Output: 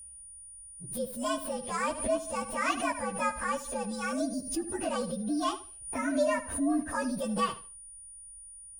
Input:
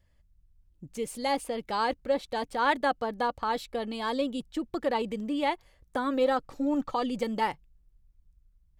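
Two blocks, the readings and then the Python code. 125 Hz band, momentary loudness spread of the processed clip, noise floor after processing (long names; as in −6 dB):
+2.5 dB, 16 LU, −49 dBFS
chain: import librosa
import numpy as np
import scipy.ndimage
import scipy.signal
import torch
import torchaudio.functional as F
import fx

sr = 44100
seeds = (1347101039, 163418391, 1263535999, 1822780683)

y = fx.partial_stretch(x, sr, pct=120)
y = fx.peak_eq(y, sr, hz=72.0, db=11.0, octaves=0.72)
y = y + 10.0 ** (-45.0 / 20.0) * np.sin(2.0 * np.pi * 9500.0 * np.arange(len(y)) / sr)
y = fx.echo_feedback(y, sr, ms=75, feedback_pct=24, wet_db=-14.0)
y = fx.pre_swell(y, sr, db_per_s=95.0)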